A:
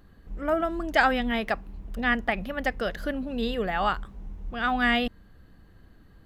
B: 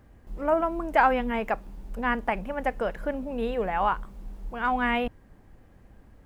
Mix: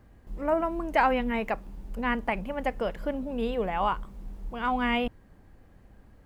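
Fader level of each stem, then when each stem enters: −13.0, −1.5 decibels; 0.00, 0.00 seconds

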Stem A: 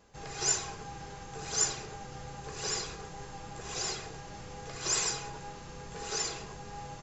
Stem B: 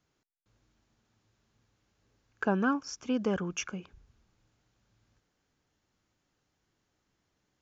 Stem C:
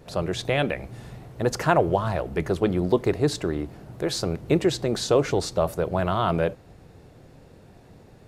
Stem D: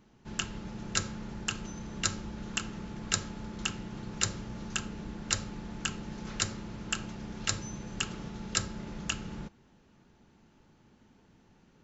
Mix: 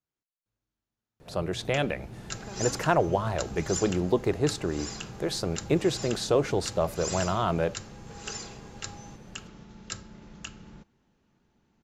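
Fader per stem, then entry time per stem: −5.5, −16.5, −3.5, −7.5 decibels; 2.15, 0.00, 1.20, 1.35 seconds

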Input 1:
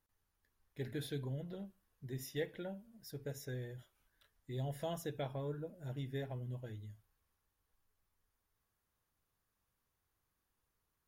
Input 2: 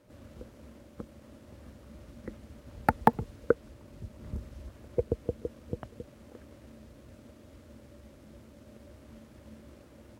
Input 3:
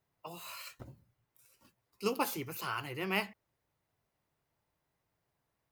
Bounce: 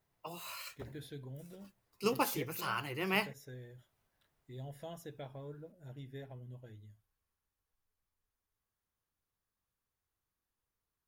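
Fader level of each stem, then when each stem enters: −6.0 dB, muted, +0.5 dB; 0.00 s, muted, 0.00 s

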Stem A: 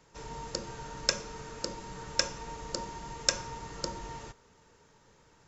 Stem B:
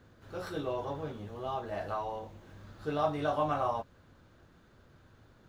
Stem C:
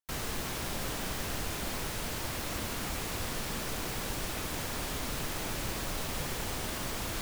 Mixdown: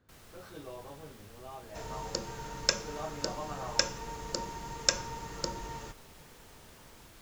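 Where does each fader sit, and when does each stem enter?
+0.5, −10.5, −19.5 decibels; 1.60, 0.00, 0.00 seconds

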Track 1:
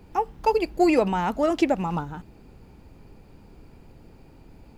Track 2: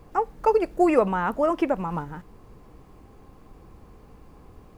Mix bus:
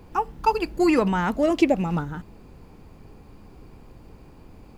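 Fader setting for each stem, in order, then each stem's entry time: +1.0, −4.0 decibels; 0.00, 0.00 seconds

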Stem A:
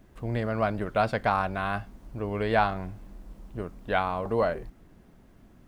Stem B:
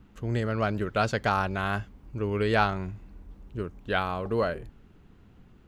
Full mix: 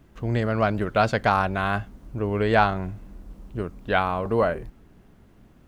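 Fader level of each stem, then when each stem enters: 0.0, −2.5 decibels; 0.00, 0.00 seconds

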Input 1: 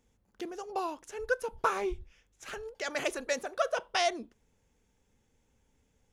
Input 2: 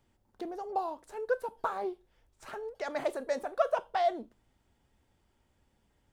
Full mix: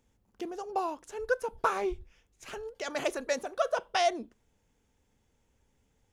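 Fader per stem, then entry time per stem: −1.5, −6.5 decibels; 0.00, 0.00 seconds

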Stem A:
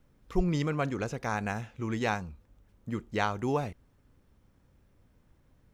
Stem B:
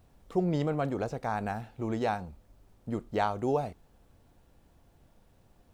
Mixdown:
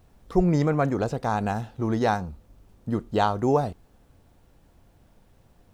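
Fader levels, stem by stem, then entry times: 0.0, +3.0 decibels; 0.00, 0.00 seconds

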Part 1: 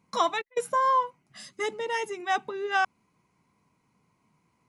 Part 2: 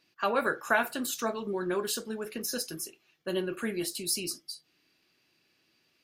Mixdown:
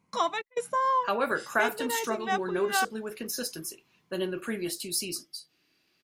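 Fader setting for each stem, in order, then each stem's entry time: −2.5, 0.0 decibels; 0.00, 0.85 seconds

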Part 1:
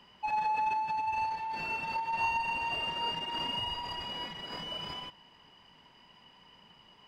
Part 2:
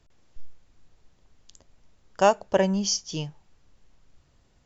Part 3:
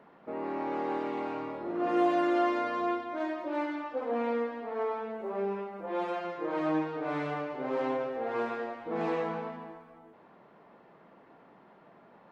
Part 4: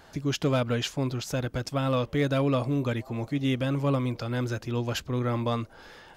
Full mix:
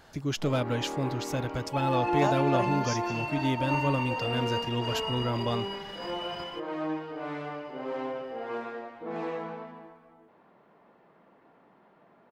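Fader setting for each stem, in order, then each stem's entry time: −1.0, −12.0, −3.0, −2.5 decibels; 1.50, 0.00, 0.15, 0.00 seconds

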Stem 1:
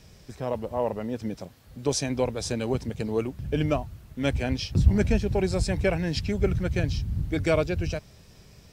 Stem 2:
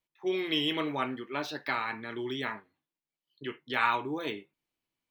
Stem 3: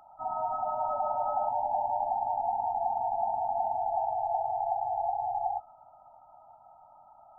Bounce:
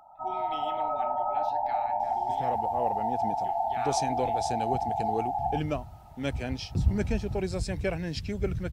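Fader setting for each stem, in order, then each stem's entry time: −5.5, −14.5, +1.0 decibels; 2.00, 0.00, 0.00 seconds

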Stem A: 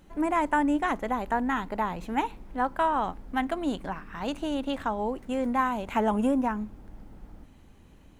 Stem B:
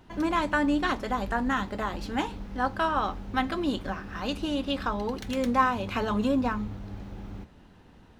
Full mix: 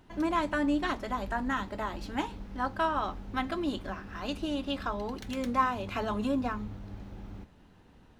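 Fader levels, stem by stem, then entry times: −13.0, −4.5 decibels; 0.00, 0.00 seconds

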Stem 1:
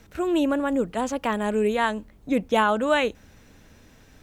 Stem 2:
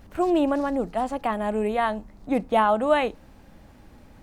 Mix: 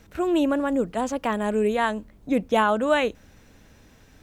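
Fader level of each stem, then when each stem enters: −1.0, −14.5 decibels; 0.00, 0.00 seconds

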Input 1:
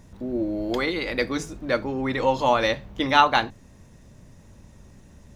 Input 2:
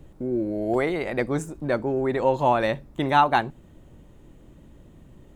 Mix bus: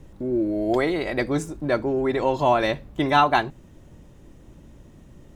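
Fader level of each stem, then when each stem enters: −7.0, +1.0 decibels; 0.00, 0.00 seconds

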